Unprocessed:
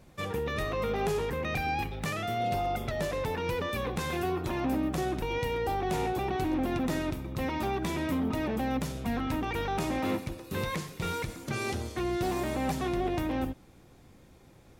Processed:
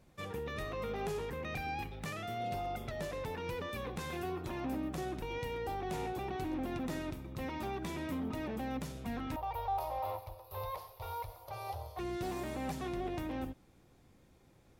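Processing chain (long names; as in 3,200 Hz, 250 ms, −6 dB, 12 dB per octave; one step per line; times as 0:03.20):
0:09.36–0:11.99: drawn EQ curve 110 Hz 0 dB, 160 Hz −27 dB, 270 Hz −28 dB, 580 Hz +6 dB, 950 Hz +9 dB, 1,600 Hz −12 dB, 4,800 Hz −4 dB, 7,600 Hz −20 dB, 12,000 Hz +6 dB
level −8 dB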